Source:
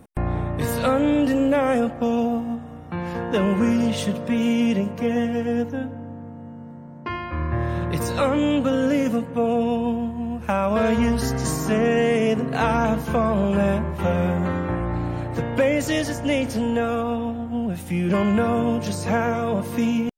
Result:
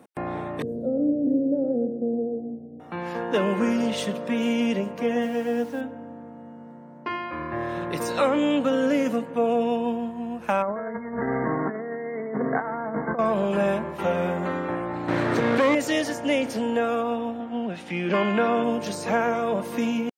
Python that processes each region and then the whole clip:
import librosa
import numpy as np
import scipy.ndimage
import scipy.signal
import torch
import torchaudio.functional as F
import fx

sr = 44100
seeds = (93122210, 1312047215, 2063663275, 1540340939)

y = fx.chain(x, sr, fx.cheby2_lowpass(hz=970.0, order=4, stop_db=40),
    fx.echo_single(ms=117, db=-7.0), at=(0.62, 2.8))
y = fx.chain(y, sr, fx.hum_notches(base_hz=50, count=7),
    fx.quant_dither(seeds[0], bits=8, dither='none'), at=(5.22, 5.81))
y = fx.chain(y, sr, fx.brickwall_lowpass(high_hz=2200.0),
    fx.over_compress(threshold_db=-24.0, ratio=-0.5), at=(10.62, 13.19))
y = fx.chain(y, sr, fx.lower_of_two(delay_ms=0.49),
    fx.high_shelf(hz=12000.0, db=-10.0),
    fx.env_flatten(amount_pct=100), at=(15.08, 15.75))
y = fx.chain(y, sr, fx.bandpass_edges(low_hz=120.0, high_hz=3700.0),
    fx.high_shelf(hz=2000.0, db=8.0), at=(17.4, 18.64))
y = scipy.signal.sosfilt(scipy.signal.butter(2, 260.0, 'highpass', fs=sr, output='sos'), y)
y = fx.high_shelf(y, sr, hz=7000.0, db=-5.5)